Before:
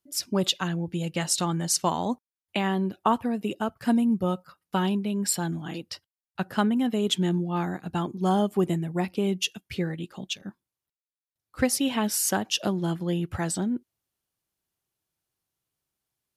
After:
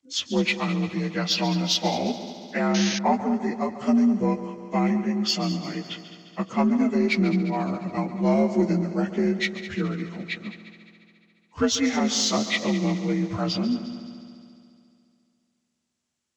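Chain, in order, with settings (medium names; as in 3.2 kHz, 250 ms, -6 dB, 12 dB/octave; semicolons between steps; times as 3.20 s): frequency axis rescaled in octaves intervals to 85%; in parallel at -4.5 dB: saturation -21 dBFS, distortion -16 dB; on the sum: multi-head delay 70 ms, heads second and third, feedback 61%, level -14 dB; painted sound noise, 2.74–2.99 s, 1.5–6.7 kHz -29 dBFS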